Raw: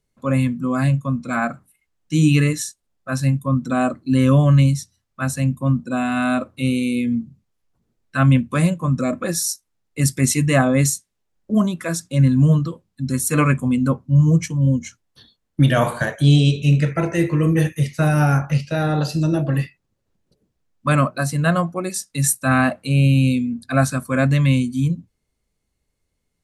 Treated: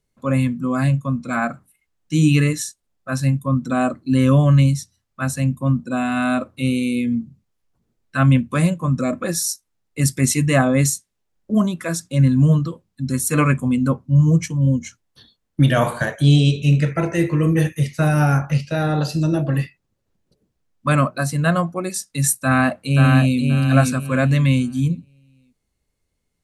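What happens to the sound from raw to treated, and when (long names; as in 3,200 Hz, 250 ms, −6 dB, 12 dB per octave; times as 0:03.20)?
0:22.39–0:23.40: delay throw 530 ms, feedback 25%, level −3.5 dB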